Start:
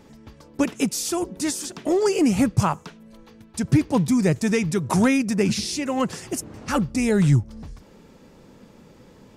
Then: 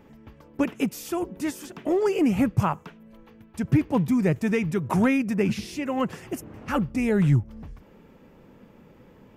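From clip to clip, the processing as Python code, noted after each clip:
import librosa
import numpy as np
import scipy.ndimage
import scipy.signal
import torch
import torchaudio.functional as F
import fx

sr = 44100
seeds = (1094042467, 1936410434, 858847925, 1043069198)

y = fx.band_shelf(x, sr, hz=6200.0, db=-11.0, octaves=1.7)
y = y * 10.0 ** (-2.5 / 20.0)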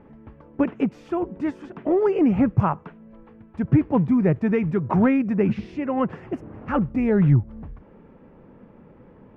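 y = scipy.signal.sosfilt(scipy.signal.butter(2, 1600.0, 'lowpass', fs=sr, output='sos'), x)
y = y * 10.0 ** (3.0 / 20.0)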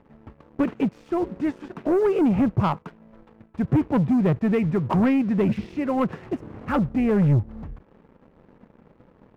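y = fx.leveller(x, sr, passes=2)
y = y * 10.0 ** (-6.0 / 20.0)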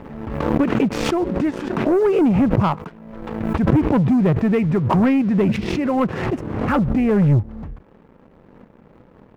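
y = fx.pre_swell(x, sr, db_per_s=40.0)
y = y * 10.0 ** (3.5 / 20.0)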